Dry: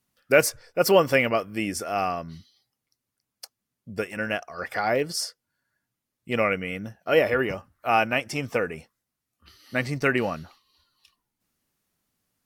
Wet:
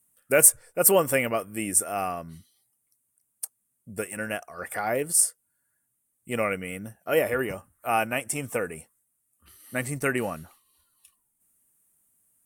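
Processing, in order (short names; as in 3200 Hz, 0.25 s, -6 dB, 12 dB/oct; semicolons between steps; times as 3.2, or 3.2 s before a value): resonant high shelf 6700 Hz +12 dB, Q 3; gain -3 dB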